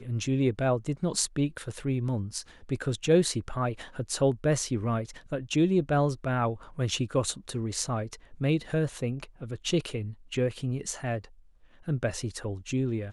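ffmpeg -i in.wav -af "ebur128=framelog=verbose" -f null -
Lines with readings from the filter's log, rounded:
Integrated loudness:
  I:         -29.5 LUFS
  Threshold: -39.7 LUFS
Loudness range:
  LRA:         4.8 LU
  Threshold: -49.6 LUFS
  LRA low:   -32.7 LUFS
  LRA high:  -28.0 LUFS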